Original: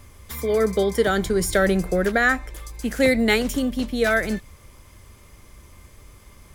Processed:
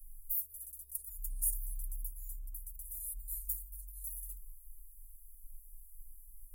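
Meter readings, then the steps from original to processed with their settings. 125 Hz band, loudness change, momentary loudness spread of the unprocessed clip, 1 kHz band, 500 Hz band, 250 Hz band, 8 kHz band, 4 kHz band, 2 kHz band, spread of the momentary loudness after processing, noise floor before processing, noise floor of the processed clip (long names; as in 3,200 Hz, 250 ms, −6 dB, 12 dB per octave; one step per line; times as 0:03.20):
below −20 dB, −18.0 dB, 11 LU, below −40 dB, below −40 dB, below −40 dB, −7.5 dB, below −40 dB, below −40 dB, 22 LU, −50 dBFS, −56 dBFS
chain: inverse Chebyshev band-stop filter 120–3,400 Hz, stop band 70 dB
level +4 dB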